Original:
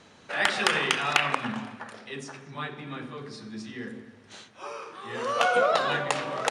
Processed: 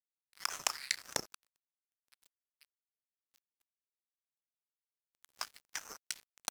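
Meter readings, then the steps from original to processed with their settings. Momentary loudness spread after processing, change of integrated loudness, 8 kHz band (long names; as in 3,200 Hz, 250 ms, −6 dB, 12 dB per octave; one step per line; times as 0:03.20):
10 LU, −12.5 dB, −1.5 dB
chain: Butterworth high-pass 3,000 Hz 72 dB per octave
dead-zone distortion −38 dBFS
ring modulator whose carrier an LFO sweeps 1,800 Hz, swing 40%, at 1.7 Hz
level +1 dB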